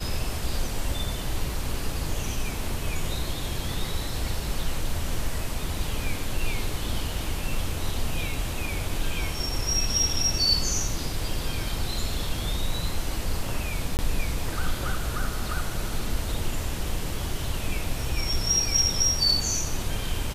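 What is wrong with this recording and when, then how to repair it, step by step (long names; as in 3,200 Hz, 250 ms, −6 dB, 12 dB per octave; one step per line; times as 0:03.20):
0:13.97–0:13.99: drop-out 19 ms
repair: repair the gap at 0:13.97, 19 ms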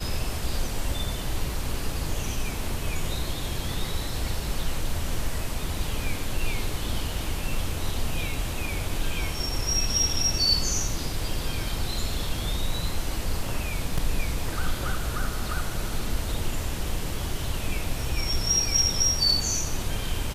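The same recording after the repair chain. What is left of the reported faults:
none of them is left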